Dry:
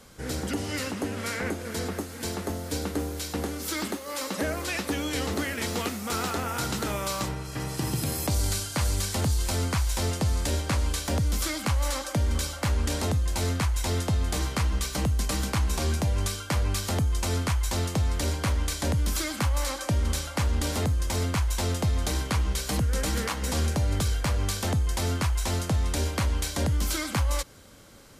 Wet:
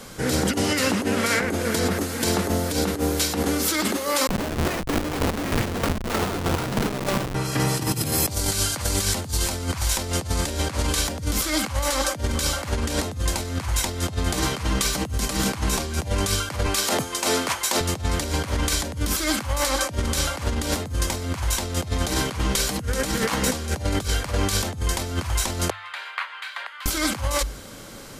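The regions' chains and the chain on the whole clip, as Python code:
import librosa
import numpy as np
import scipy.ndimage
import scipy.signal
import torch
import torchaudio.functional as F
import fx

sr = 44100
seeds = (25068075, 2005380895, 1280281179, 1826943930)

y = fx.chain(x, sr, fx.schmitt(flips_db=-27.5),
    fx.chopper(hz=3.2, depth_pct=60, duty_pct=30), at=(4.27, 7.35))
y = fx.chain(y, sr, fx.highpass(hz=320.0, slope=12),
    fx.clip_hard(threshold_db=-20.0), at=(16.66, 17.81))
y = fx.chain(y, sr, fx.highpass(hz=1200.0, slope=24),
    fx.air_absorb(metres=470.0),
    fx.notch(hz=5500.0, q=8.7), at=(25.7, 26.86))
y = fx.peak_eq(y, sr, hz=65.0, db=-13.0, octaves=0.38)
y = fx.hum_notches(y, sr, base_hz=50, count=2)
y = fx.over_compress(y, sr, threshold_db=-32.0, ratio=-0.5)
y = y * 10.0 ** (9.0 / 20.0)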